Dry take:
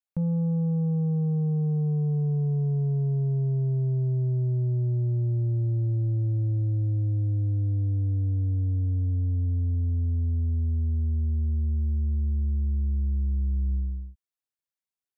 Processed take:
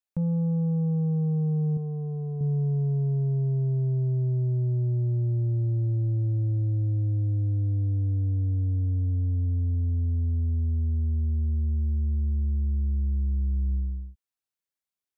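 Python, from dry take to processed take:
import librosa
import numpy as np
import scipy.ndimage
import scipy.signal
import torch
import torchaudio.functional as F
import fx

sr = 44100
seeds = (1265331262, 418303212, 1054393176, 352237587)

y = fx.low_shelf(x, sr, hz=210.0, db=-9.5, at=(1.77, 2.41))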